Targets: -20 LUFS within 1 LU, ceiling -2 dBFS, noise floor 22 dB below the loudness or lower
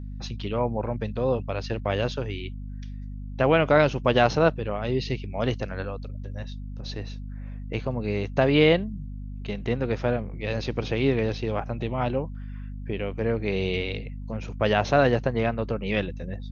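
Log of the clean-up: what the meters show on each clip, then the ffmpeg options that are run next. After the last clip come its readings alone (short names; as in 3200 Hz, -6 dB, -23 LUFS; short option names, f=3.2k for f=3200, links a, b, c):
hum 50 Hz; harmonics up to 250 Hz; hum level -33 dBFS; loudness -26.0 LUFS; peak -4.5 dBFS; loudness target -20.0 LUFS
-> -af "bandreject=f=50:t=h:w=6,bandreject=f=100:t=h:w=6,bandreject=f=150:t=h:w=6,bandreject=f=200:t=h:w=6,bandreject=f=250:t=h:w=6"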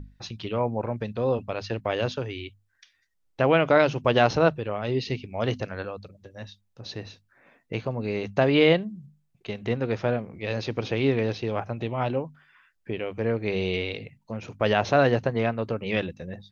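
hum none; loudness -26.0 LUFS; peak -5.0 dBFS; loudness target -20.0 LUFS
-> -af "volume=6dB,alimiter=limit=-2dB:level=0:latency=1"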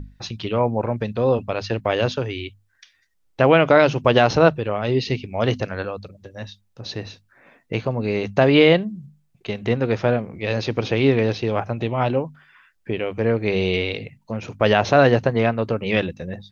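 loudness -20.5 LUFS; peak -2.0 dBFS; noise floor -65 dBFS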